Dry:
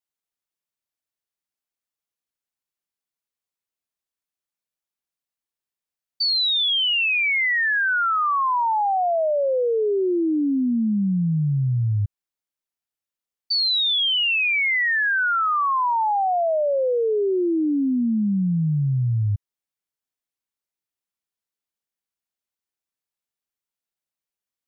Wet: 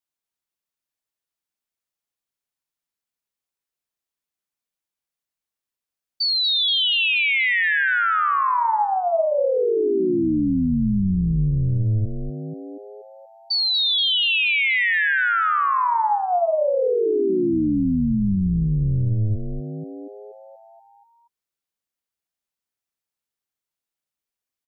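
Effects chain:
echo with shifted repeats 239 ms, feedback 60%, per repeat −130 Hz, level −7.5 dB

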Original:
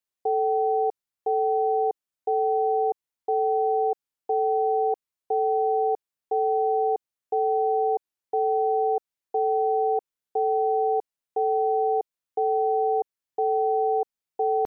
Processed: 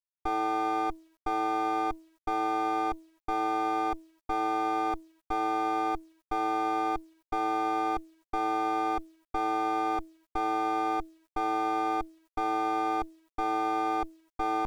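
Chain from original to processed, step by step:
lower of the sound and its delayed copy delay 0.96 ms
hum removal 322.5 Hz, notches 3
bit reduction 11 bits
level −2.5 dB

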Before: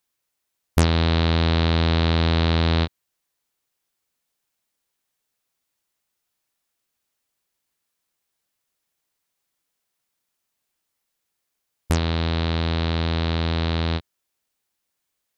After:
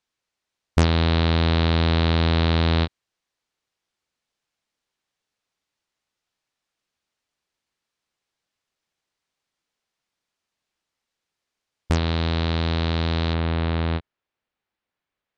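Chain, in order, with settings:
low-pass filter 5,700 Hz 12 dB per octave, from 0:12.06 9,500 Hz, from 0:13.34 2,700 Hz

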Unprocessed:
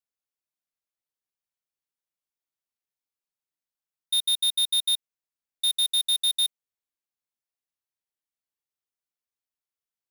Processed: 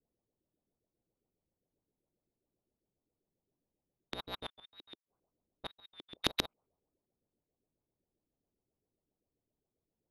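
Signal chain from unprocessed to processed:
adaptive Wiener filter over 25 samples
low-pass that shuts in the quiet parts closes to 400 Hz, open at −24.5 dBFS
tape wow and flutter 72 cents
auto-filter low-pass saw up 7.5 Hz 300–2,700 Hz
0:04.36–0:06.17: gate with flip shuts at −39 dBFS, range −37 dB
every bin compressed towards the loudest bin 2 to 1
level +8 dB

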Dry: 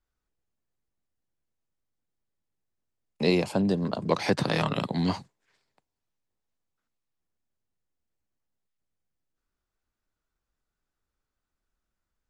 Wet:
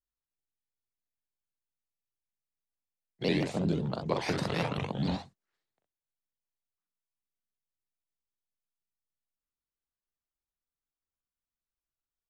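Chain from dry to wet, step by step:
pitch shifter gated in a rhythm −3.5 semitones, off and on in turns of 81 ms
noise gate −42 dBFS, range −11 dB
on a send: ambience of single reflections 43 ms −6 dB, 64 ms −6.5 dB
on the sum: pitch modulation by a square or saw wave saw up 6.7 Hz, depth 160 cents
level −5.5 dB

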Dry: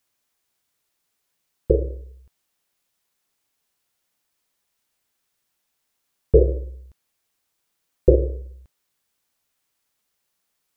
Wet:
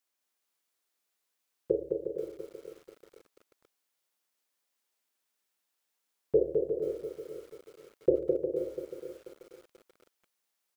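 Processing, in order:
high-pass filter 260 Hz 12 dB per octave
bouncing-ball delay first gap 210 ms, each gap 0.7×, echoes 5
feedback echo at a low word length 485 ms, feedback 35%, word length 7 bits, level −10 dB
level −8.5 dB

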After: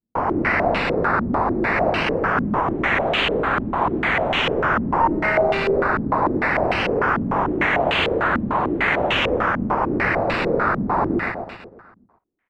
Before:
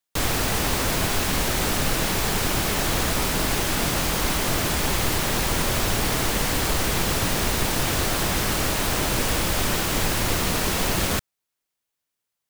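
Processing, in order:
0:05.00–0:05.75: samples sorted by size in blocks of 16 samples
high-pass filter 51 Hz
low-shelf EQ 160 Hz −10.5 dB
sample-and-hold swept by an LFO 11×, swing 60% 0.21 Hz
on a send: repeating echo 124 ms, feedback 57%, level −4.5 dB
on the sum: low-pass on a step sequencer 6.7 Hz 230–2,900 Hz

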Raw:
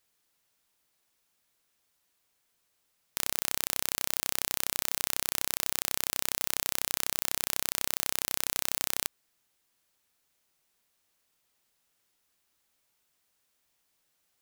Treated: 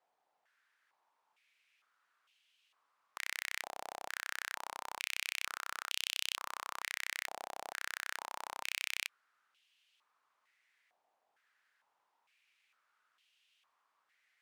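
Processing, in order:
harmonic generator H 8 −16 dB, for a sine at −1 dBFS
band-pass on a step sequencer 2.2 Hz 760–2,900 Hz
level +13 dB

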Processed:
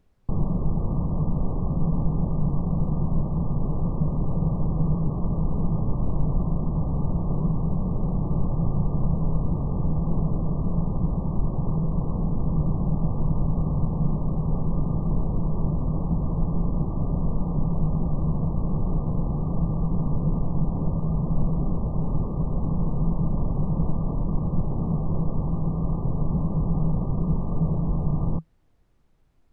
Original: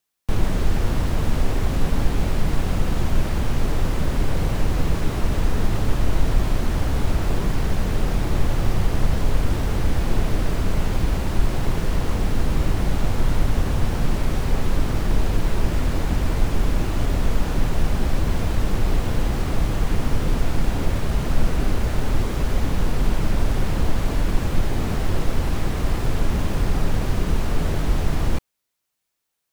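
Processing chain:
Chebyshev low-pass filter 1,200 Hz, order 10
parametric band 160 Hz +14 dB 0.5 octaves
background noise brown −56 dBFS
level −5.5 dB

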